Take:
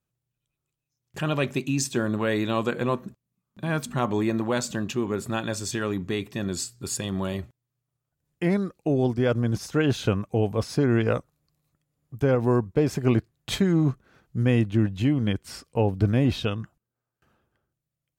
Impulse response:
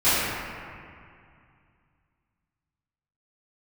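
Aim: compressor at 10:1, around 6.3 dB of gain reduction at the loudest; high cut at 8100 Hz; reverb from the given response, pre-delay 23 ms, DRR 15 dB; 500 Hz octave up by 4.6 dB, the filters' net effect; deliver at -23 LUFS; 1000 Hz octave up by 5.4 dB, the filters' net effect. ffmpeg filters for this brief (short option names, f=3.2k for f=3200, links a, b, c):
-filter_complex "[0:a]lowpass=8.1k,equalizer=f=500:t=o:g=4.5,equalizer=f=1k:t=o:g=5.5,acompressor=threshold=-20dB:ratio=10,asplit=2[a][b];[1:a]atrim=start_sample=2205,adelay=23[c];[b][c]afir=irnorm=-1:irlink=0,volume=-35dB[d];[a][d]amix=inputs=2:normalize=0,volume=4dB"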